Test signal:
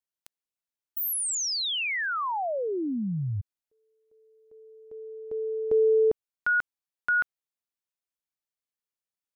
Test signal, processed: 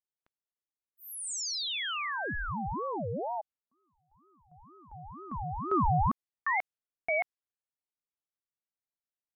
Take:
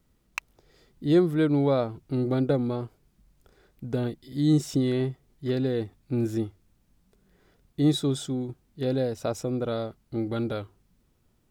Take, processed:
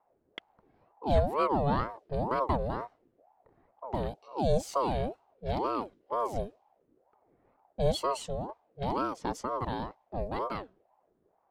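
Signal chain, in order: low-pass opened by the level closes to 1100 Hz, open at -24.5 dBFS; ring modulator with a swept carrier 560 Hz, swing 50%, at 2.1 Hz; gain -2 dB

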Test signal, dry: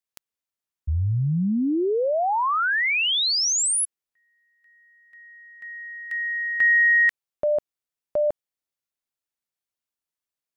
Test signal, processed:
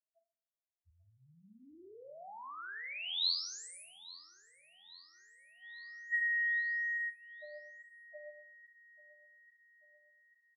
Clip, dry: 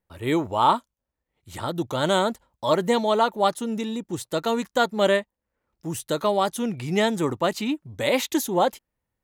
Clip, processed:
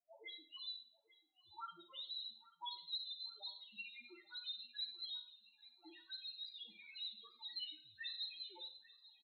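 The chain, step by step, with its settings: auto-wah 660–4100 Hz, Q 6.8, up, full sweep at -21.5 dBFS; high shelf 2800 Hz +5 dB; in parallel at +1 dB: compressor, threshold -46 dBFS; on the sum: notches 60/120/180/240 Hz; loudest bins only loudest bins 1; on a send: feedback echo 0.839 s, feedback 58%, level -19 dB; on the sum: Schroeder reverb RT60 0.46 s, combs from 32 ms, DRR 7.5 dB; gain +1.5 dB

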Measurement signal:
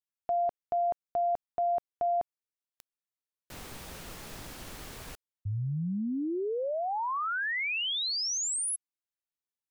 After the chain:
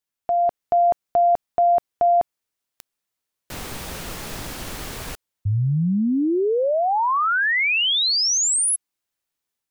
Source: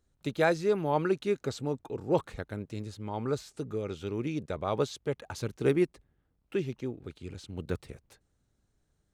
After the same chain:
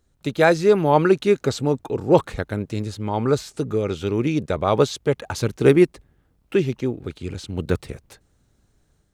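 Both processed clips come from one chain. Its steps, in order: AGC gain up to 4 dB; gain +7.5 dB

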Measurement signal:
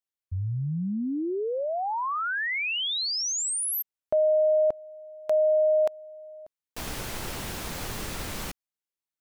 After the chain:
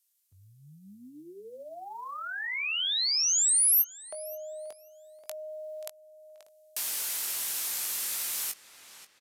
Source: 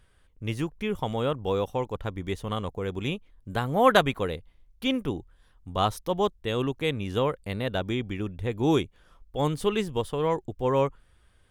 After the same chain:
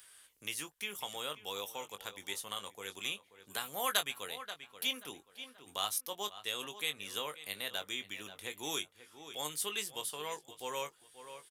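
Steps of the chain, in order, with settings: high shelf 5800 Hz +3.5 dB; darkening echo 0.532 s, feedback 30%, low-pass 3600 Hz, level -15.5 dB; downsampling 32000 Hz; differentiator; doubler 20 ms -9 dB; short-mantissa float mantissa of 6-bit; three-band squash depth 40%; gain +4.5 dB

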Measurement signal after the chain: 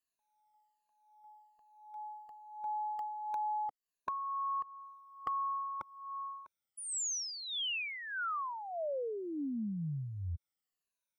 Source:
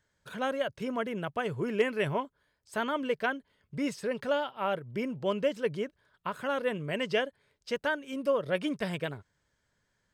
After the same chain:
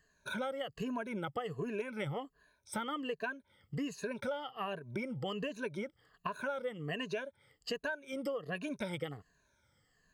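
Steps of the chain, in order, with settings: moving spectral ripple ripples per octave 1.5, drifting -1.3 Hz, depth 18 dB; compressor 8:1, threshold -35 dBFS

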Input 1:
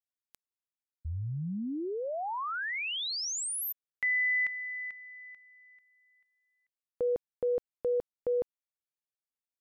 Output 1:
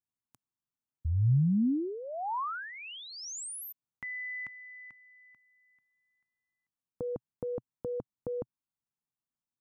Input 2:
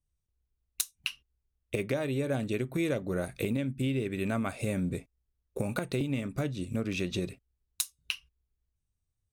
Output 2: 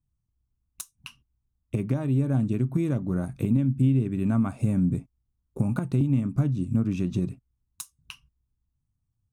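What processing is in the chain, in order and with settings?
ten-band EQ 125 Hz +9 dB, 250 Hz +7 dB, 500 Hz -10 dB, 1000 Hz +5 dB, 2000 Hz -10 dB, 4000 Hz -10 dB, 16000 Hz -12 dB; gain +1.5 dB

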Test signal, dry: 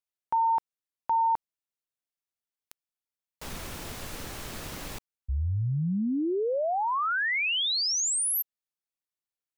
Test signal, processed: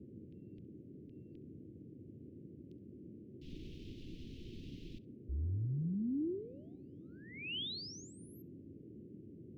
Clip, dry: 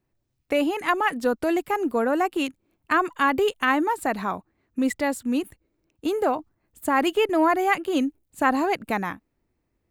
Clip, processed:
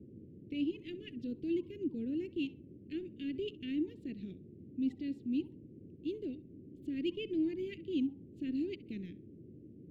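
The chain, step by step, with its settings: transient shaper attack -4 dB, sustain -8 dB; band noise 85–780 Hz -41 dBFS; elliptic band-stop 340–2900 Hz, stop band 80 dB; air absorption 270 m; on a send: tape echo 66 ms, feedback 27%, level -18 dB, low-pass 3700 Hz; on the sum: gain -7.5 dB

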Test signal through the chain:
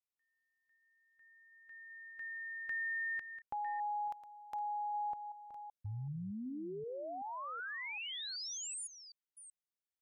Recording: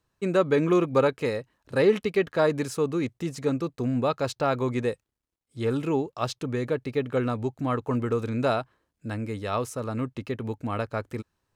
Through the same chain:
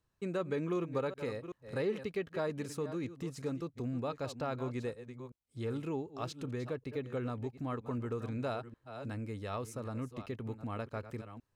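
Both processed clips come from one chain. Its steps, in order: reverse delay 0.38 s, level -13 dB; low shelf 140 Hz +5 dB; compressor 1.5:1, threshold -36 dBFS; gain -7 dB

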